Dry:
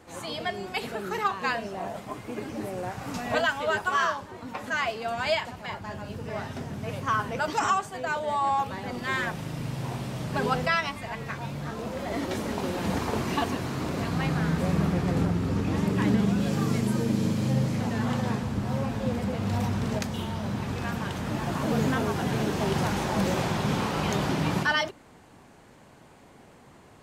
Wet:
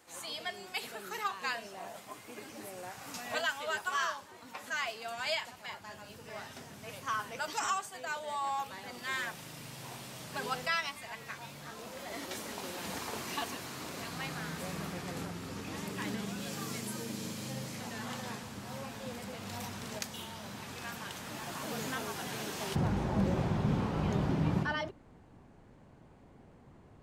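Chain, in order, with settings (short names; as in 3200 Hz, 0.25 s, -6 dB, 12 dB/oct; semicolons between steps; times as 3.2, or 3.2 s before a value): tilt +3 dB/oct, from 22.74 s -2.5 dB/oct; gain -9 dB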